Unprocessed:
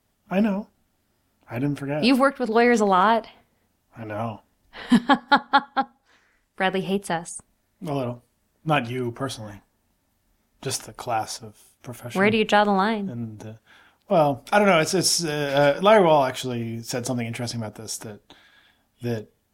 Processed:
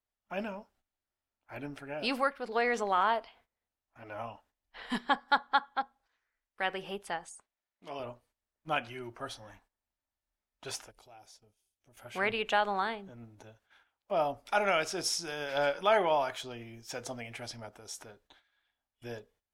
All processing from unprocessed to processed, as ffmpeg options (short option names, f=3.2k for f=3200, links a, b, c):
-filter_complex "[0:a]asettb=1/sr,asplit=3[a][b][c];[a]atrim=end=7.364[d];[b]atrim=start=7.36:end=8,asetpts=PTS-STARTPTS,afade=t=in:d=0.004:c=qsin,afade=t=out:st=0.636:d=0.004:c=qsin,lowpass=3.9k,aemphasis=mode=production:type=bsi[e];[c]atrim=start=7.996[f];[d][e]acrossfade=d=0.004:c1=hsin:c2=qsin[g];[g][f]acrossfade=d=0.004:c1=qsin:c2=hsin,asettb=1/sr,asplit=3[h][i][j];[h]atrim=end=10.914[k];[i]atrim=start=10.91:end=11.97,asetpts=PTS-STARTPTS,afade=t=in:d=0.004:c=qsin,afade=t=out:st=1.056:d=0.004:c=qsin,equalizer=f=1.2k:w=0.75:g=-12,acompressor=threshold=-50dB:ratio=2:attack=3.2:release=140:knee=1:detection=peak[l];[j]atrim=start=11.966[m];[k][l]acrossfade=d=0.004:c1=hsin:c2=qsin[n];[n][m]acrossfade=d=0.004:c1=qsin:c2=hsin,highshelf=f=6.6k:g=-9.5,agate=range=-12dB:threshold=-52dB:ratio=16:detection=peak,equalizer=f=170:w=0.53:g=-14,volume=-7dB"